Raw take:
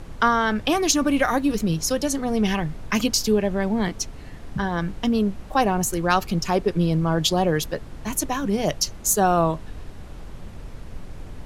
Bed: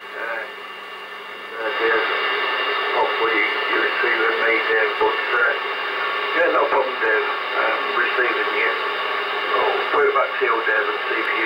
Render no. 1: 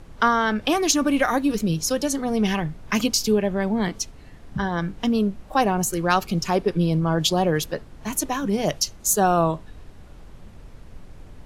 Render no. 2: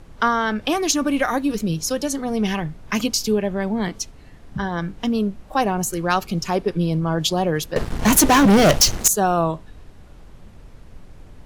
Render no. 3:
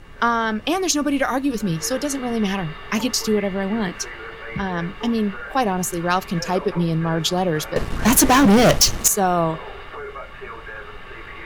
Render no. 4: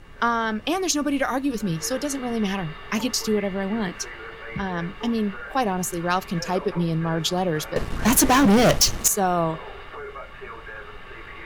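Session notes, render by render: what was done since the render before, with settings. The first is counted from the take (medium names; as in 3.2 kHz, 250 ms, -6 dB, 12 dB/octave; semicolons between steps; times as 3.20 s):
noise print and reduce 6 dB
7.76–9.08 s: waveshaping leveller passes 5
add bed -16.5 dB
trim -3 dB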